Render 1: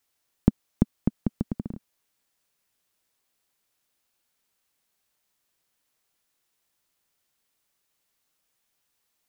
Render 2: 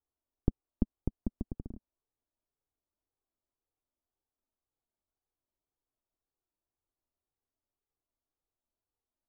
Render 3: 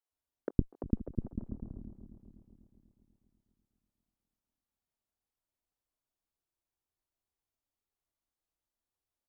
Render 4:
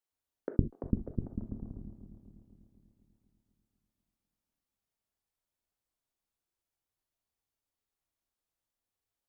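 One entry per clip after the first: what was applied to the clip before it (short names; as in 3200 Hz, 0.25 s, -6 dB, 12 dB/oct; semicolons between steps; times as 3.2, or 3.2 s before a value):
Bessel low-pass 760 Hz, order 8; low shelf 61 Hz +9.5 dB; flange 1.9 Hz, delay 2.3 ms, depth 1.1 ms, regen -26%; gain -5 dB
regenerating reverse delay 0.123 s, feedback 77%, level -11 dB; added harmonics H 3 -17 dB, 8 -32 dB, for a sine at -10 dBFS; bands offset in time highs, lows 0.11 s, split 390 Hz; gain +3.5 dB
non-linear reverb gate 90 ms flat, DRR 7.5 dB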